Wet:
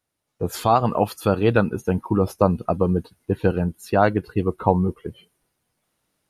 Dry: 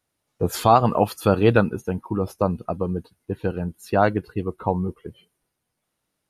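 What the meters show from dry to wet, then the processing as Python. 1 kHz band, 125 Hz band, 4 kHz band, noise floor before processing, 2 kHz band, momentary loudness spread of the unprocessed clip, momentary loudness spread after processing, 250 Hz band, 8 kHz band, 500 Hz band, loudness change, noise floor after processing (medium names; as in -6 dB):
-0.5 dB, +1.5 dB, -1.5 dB, -79 dBFS, 0.0 dB, 14 LU, 7 LU, +2.0 dB, no reading, +1.0 dB, +1.0 dB, -79 dBFS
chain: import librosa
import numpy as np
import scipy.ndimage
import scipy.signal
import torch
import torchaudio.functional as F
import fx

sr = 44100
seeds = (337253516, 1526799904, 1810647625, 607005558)

y = fx.rider(x, sr, range_db=4, speed_s=0.5)
y = y * librosa.db_to_amplitude(1.5)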